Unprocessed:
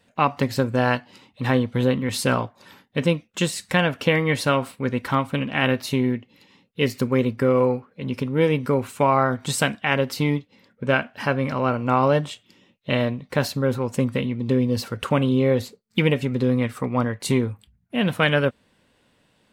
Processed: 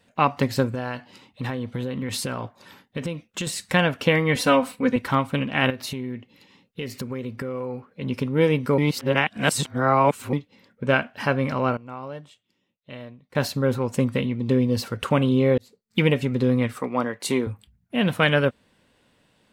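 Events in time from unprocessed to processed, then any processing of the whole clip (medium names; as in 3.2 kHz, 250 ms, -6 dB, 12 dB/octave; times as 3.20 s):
0.67–3.47 s: compression 10:1, threshold -24 dBFS
4.35–4.96 s: comb 4 ms, depth 91%
5.70–7.92 s: compression, threshold -27 dBFS
8.78–10.33 s: reverse
11.40–13.72 s: dip -17 dB, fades 0.37 s logarithmic
15.58–16.02 s: fade in
16.79–17.47 s: high-pass 250 Hz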